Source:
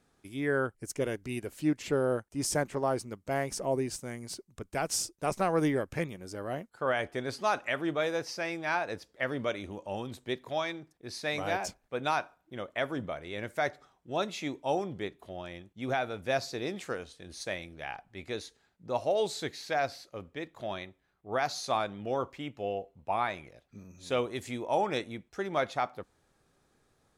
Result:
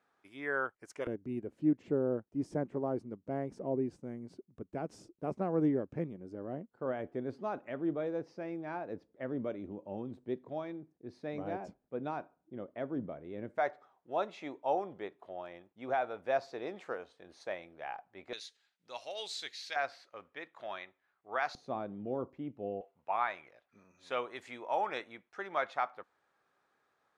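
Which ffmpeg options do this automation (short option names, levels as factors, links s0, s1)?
-af "asetnsamples=n=441:p=0,asendcmd='1.07 bandpass f 260;13.58 bandpass f 790;18.33 bandpass f 3500;19.76 bandpass f 1400;21.55 bandpass f 250;22.81 bandpass f 1300',bandpass=f=1200:t=q:w=0.96:csg=0"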